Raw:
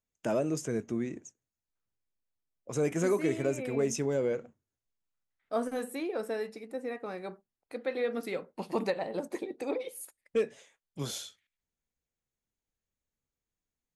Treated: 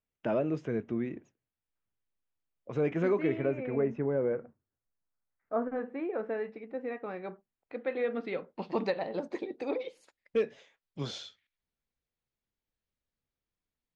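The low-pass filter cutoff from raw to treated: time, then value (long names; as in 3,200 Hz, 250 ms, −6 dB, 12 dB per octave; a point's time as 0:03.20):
low-pass filter 24 dB per octave
0:03.16 3,300 Hz
0:03.99 1,800 Hz
0:05.62 1,800 Hz
0:06.89 3,100 Hz
0:08.03 3,100 Hz
0:08.91 5,000 Hz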